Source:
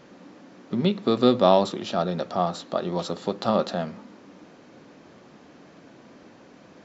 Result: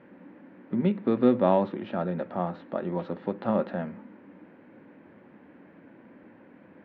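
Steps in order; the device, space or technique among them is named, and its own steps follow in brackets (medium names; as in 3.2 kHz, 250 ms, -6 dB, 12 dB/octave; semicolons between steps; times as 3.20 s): bass cabinet (cabinet simulation 86–2100 Hz, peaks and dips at 140 Hz -7 dB, 420 Hz -5 dB, 700 Hz -8 dB, 1.2 kHz -9 dB)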